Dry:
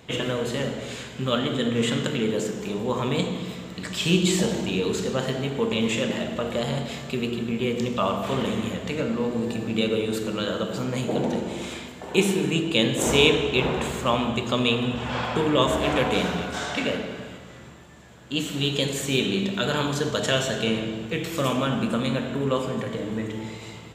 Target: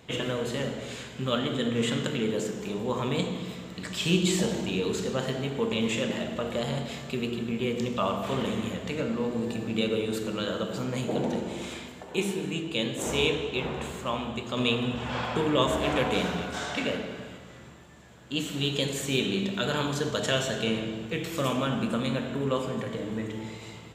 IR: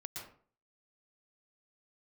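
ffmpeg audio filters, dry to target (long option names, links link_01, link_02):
-filter_complex "[0:a]asettb=1/sr,asplit=3[link_01][link_02][link_03];[link_01]atrim=end=12.034[link_04];[link_02]atrim=start=12.03:end=14.57,asetpts=PTS-STARTPTS,afade=type=in:duration=0.004:curve=qsin,afade=type=out:start_time=2.536:duration=0.004:curve=qsin,flanger=delay=9.9:depth=5.2:regen=68:speed=2:shape=triangular[link_05];[link_03]atrim=start=14.566[link_06];[link_04][link_05]acrossfade=duration=0.004:curve1=hsin:curve2=qsin[link_07];[link_07][link_06]acrossfade=duration=0.004:curve1=qsin:curve2=hsin,volume=-3.5dB"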